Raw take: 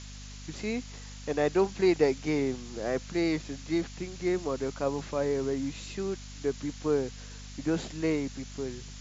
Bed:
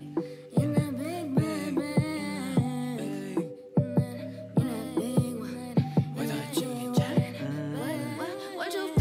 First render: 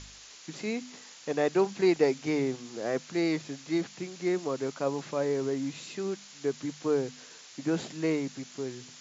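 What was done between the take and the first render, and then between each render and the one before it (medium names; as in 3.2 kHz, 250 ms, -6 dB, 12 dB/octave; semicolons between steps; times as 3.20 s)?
de-hum 50 Hz, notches 5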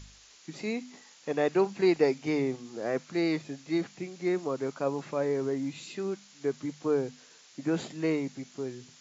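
noise print and reduce 6 dB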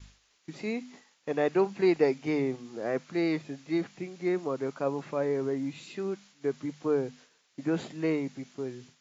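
expander -48 dBFS; tone controls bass 0 dB, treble -6 dB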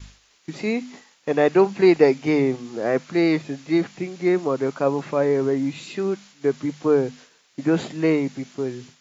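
trim +9 dB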